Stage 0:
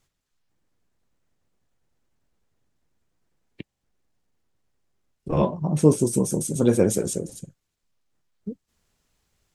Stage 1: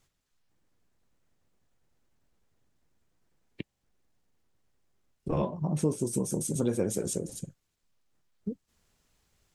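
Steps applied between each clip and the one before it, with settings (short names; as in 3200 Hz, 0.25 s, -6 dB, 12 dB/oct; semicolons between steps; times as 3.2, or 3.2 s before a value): compressor 2.5:1, threshold -29 dBFS, peak gain reduction 13 dB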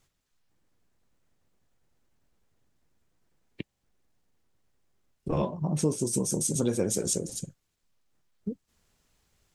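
dynamic EQ 5600 Hz, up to +8 dB, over -52 dBFS, Q 0.84; gain +1 dB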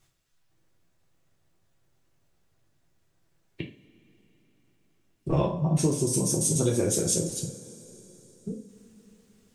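reverb, pre-delay 3 ms, DRR -1 dB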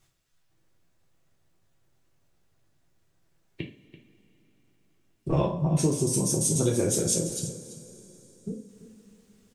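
echo 0.336 s -15.5 dB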